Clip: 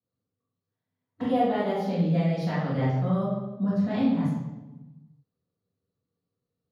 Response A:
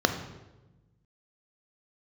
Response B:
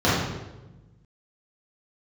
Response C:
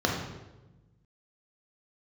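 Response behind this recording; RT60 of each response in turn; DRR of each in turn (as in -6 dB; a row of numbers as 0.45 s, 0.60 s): B; 1.1 s, 1.1 s, 1.1 s; 6.5 dB, -11.0 dB, -1.0 dB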